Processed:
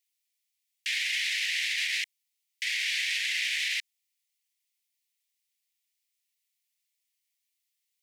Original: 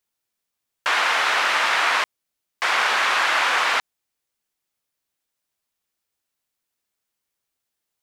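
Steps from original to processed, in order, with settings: single-diode clipper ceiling -21.5 dBFS; steep high-pass 1.9 kHz 72 dB/octave; peak limiter -20.5 dBFS, peak gain reduction 7.5 dB

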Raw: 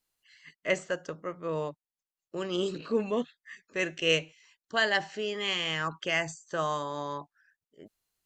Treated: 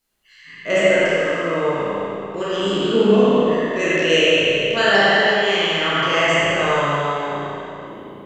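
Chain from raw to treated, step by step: spectral sustain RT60 2.31 s; dynamic bell 2 kHz, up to -4 dB, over -37 dBFS, Q 0.82; spring tank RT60 2 s, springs 35/55 ms, chirp 55 ms, DRR -7 dB; trim +4 dB

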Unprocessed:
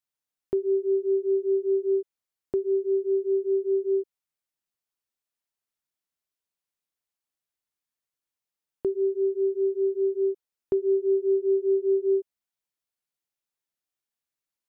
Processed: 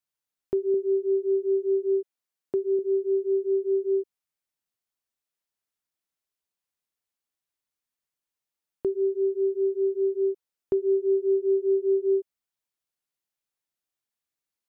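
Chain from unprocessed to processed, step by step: 0.74–2.79 s: high-pass 140 Hz 12 dB/octave

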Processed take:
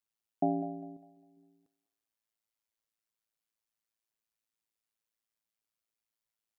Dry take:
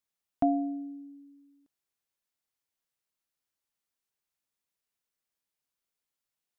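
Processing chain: 0.96–1.37 s: dynamic bell 290 Hz, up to -6 dB, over -58 dBFS; AM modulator 110 Hz, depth 80%; thinning echo 201 ms, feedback 49%, high-pass 760 Hz, level -9 dB

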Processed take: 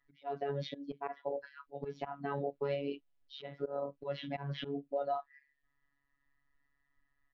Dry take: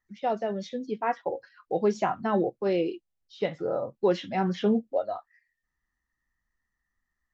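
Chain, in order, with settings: low-pass 3.8 kHz 24 dB/octave; comb 4.1 ms, depth 53%; slow attack 412 ms; peak limiter -29 dBFS, peak gain reduction 13 dB; robot voice 141 Hz; trim +4 dB

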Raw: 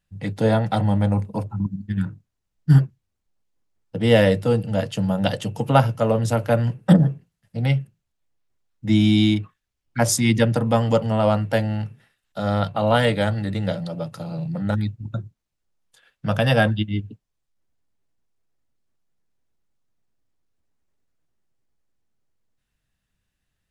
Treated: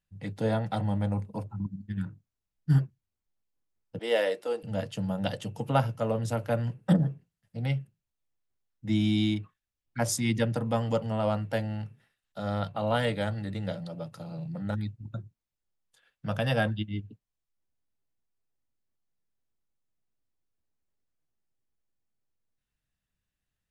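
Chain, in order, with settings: 3.99–4.63 s: high-pass 350 Hz 24 dB/octave; trim -9 dB

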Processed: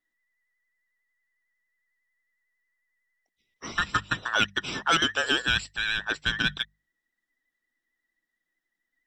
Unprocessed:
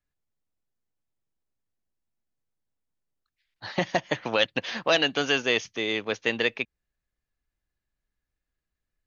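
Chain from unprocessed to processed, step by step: every band turned upside down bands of 2 kHz; hum notches 50/100/150/200 Hz; in parallel at -9.5 dB: saturation -24 dBFS, distortion -7 dB; on the sum: vibrato 11 Hz 45 cents; trim -2 dB

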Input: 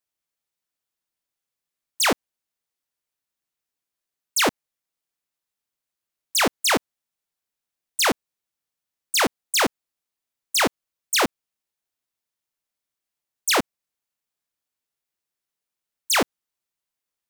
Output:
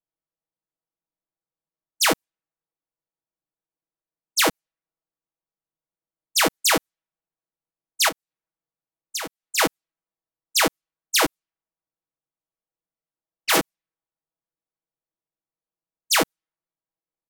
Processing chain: 11.25–13.58 s: cycle switcher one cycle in 3, inverted; level-controlled noise filter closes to 900 Hz, open at -20 dBFS; 8.08–9.58 s: compression 8:1, threshold -30 dBFS, peak gain reduction 13 dB; treble shelf 10 kHz +10.5 dB; comb 6.2 ms, depth 87%; trim -2.5 dB

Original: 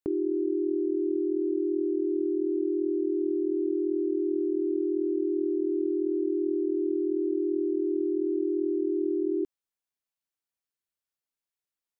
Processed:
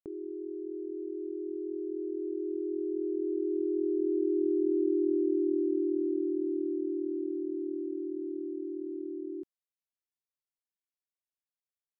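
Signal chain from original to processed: Doppler pass-by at 4.89 s, 10 m/s, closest 13 m

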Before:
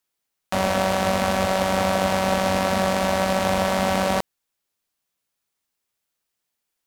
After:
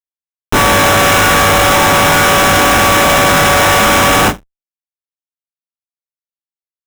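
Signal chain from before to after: FFT filter 250 Hz 0 dB, 590 Hz -8 dB, 1.4 kHz +11 dB, 14 kHz +1 dB; flutter echo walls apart 3.3 m, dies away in 0.61 s; FDN reverb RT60 1.1 s, low-frequency decay 1.45×, high-frequency decay 0.8×, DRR -6.5 dB; Schmitt trigger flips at -13.5 dBFS; band-stop 4.5 kHz, Q 5.9; endings held to a fixed fall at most 300 dB/s; trim +3.5 dB

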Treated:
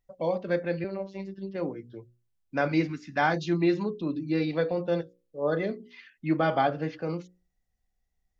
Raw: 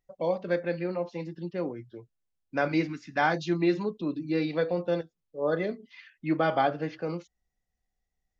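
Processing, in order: bass shelf 190 Hz +5.5 dB; hum notches 60/120/180/240/300/360/420/480/540 Hz; 0.84–1.55 s: robot voice 194 Hz

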